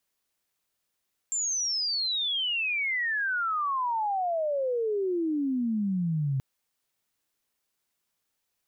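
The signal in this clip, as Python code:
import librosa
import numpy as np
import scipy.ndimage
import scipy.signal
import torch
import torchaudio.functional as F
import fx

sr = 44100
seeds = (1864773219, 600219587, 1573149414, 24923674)

y = fx.chirp(sr, length_s=5.08, from_hz=7400.0, to_hz=130.0, law='logarithmic', from_db=-26.0, to_db=-24.5)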